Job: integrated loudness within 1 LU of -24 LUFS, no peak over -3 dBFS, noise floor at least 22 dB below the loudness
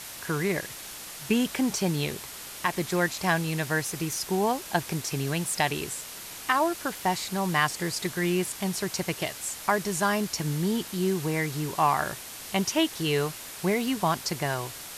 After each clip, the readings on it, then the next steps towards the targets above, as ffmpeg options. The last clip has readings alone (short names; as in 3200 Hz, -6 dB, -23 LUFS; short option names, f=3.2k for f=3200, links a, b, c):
noise floor -41 dBFS; noise floor target -50 dBFS; loudness -28.0 LUFS; peak -9.5 dBFS; loudness target -24.0 LUFS
-> -af "afftdn=nr=9:nf=-41"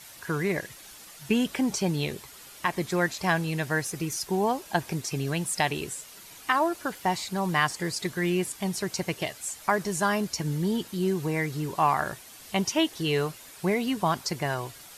noise floor -48 dBFS; noise floor target -50 dBFS
-> -af "afftdn=nr=6:nf=-48"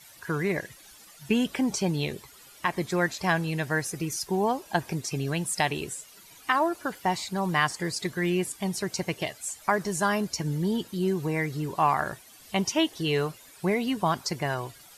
noise floor -52 dBFS; loudness -28.5 LUFS; peak -10.0 dBFS; loudness target -24.0 LUFS
-> -af "volume=4.5dB"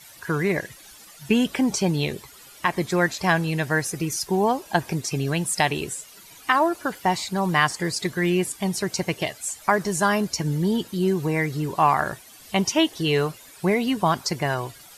loudness -24.0 LUFS; peak -5.5 dBFS; noise floor -47 dBFS